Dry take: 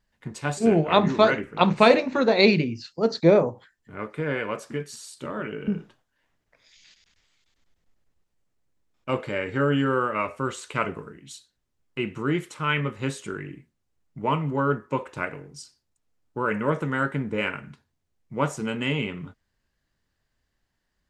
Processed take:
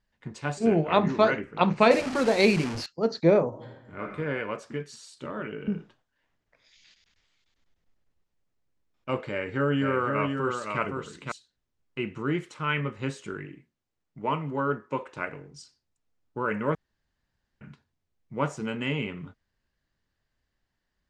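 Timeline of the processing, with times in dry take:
1.91–2.86 s: one-bit delta coder 64 kbps, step -23.5 dBFS
3.48–4.01 s: reverb throw, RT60 1.1 s, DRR -1.5 dB
9.30–11.32 s: delay 514 ms -4.5 dB
13.46–15.28 s: bass shelf 120 Hz -9 dB
16.75–17.61 s: room tone
whole clip: low-pass 6.5 kHz 12 dB/octave; dynamic bell 3.6 kHz, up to -5 dB, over -50 dBFS, Q 4.8; trim -3 dB

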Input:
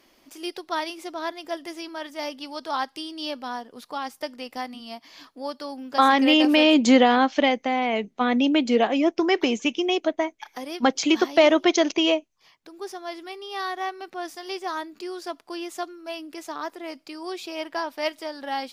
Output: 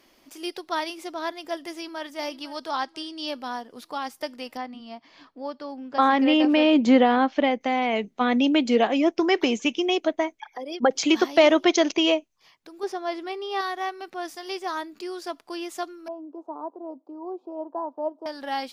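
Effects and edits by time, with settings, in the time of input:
1.69–2.09 s: echo throw 500 ms, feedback 55%, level -15.5 dB
2.70–3.28 s: Chebyshev low-pass 7.3 kHz
4.57–7.61 s: tape spacing loss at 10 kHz 20 dB
10.40–10.91 s: resonances exaggerated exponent 2
12.83–13.61 s: FFT filter 150 Hz 0 dB, 440 Hz +7 dB, 4.7 kHz 0 dB, 11 kHz -7 dB
16.08–18.26 s: elliptic band-pass 250–970 Hz

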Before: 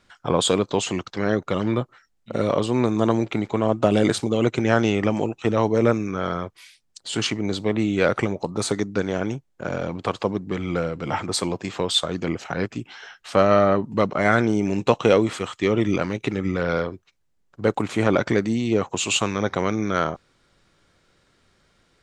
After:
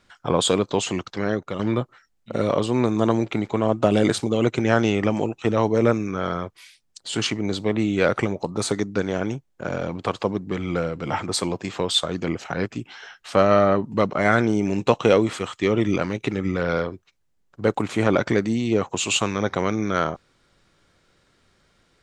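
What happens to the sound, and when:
1.13–1.59 s: fade out, to -7 dB

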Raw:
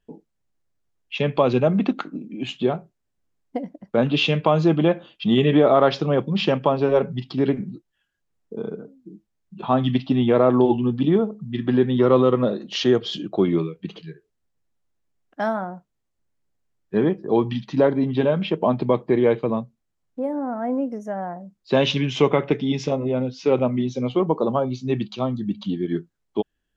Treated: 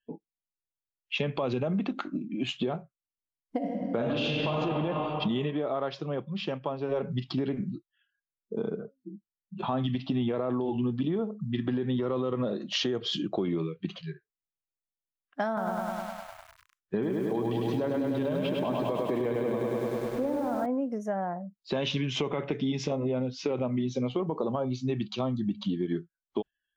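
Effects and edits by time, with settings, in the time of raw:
3.57–4.55 s: reverb throw, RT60 2.4 s, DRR -4 dB
5.39–7.00 s: dip -11.5 dB, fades 0.12 s
15.47–20.66 s: bit-crushed delay 101 ms, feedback 80%, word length 8-bit, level -4 dB
whole clip: spectral noise reduction 25 dB; peak limiter -14.5 dBFS; compression, threshold -26 dBFS

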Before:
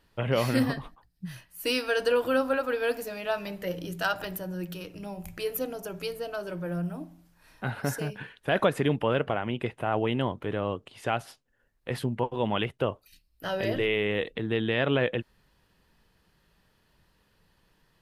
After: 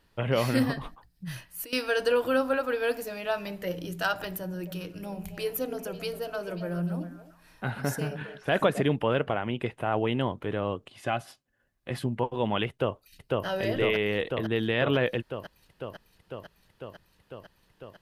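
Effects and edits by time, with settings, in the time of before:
0.81–1.73 s: compressor with a negative ratio -38 dBFS
4.29–8.82 s: repeats whose band climbs or falls 134 ms, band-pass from 200 Hz, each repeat 1.4 oct, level -5 dB
10.90–12.06 s: comb of notches 460 Hz
12.69–13.46 s: echo throw 500 ms, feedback 80%, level -0.5 dB

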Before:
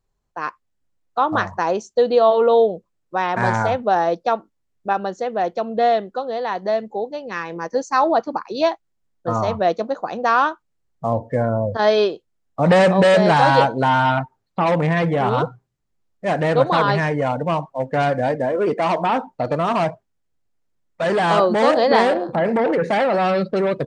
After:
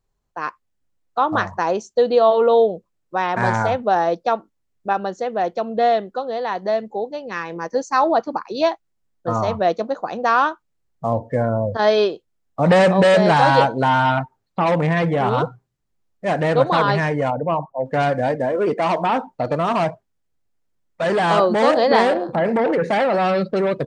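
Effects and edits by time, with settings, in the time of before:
17.30–17.86 s: resonances exaggerated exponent 1.5

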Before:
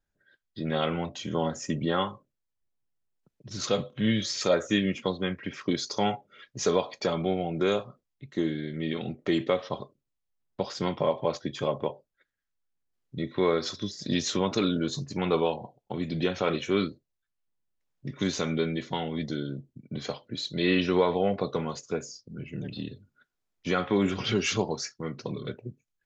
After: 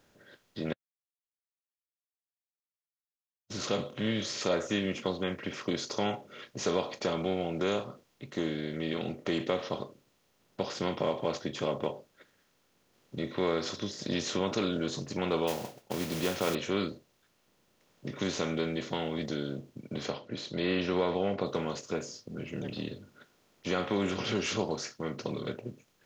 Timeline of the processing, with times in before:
0.73–3.50 s: mute
15.47–16.55 s: modulation noise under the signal 11 dB
20.10–21.46 s: distance through air 120 m
whole clip: spectral levelling over time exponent 0.6; trim -8 dB

